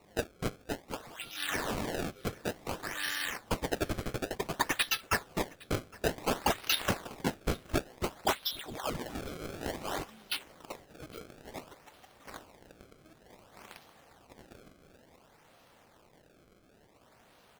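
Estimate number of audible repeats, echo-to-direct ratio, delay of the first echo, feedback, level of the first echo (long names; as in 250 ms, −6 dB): 2, −23.0 dB, 811 ms, 34%, −23.5 dB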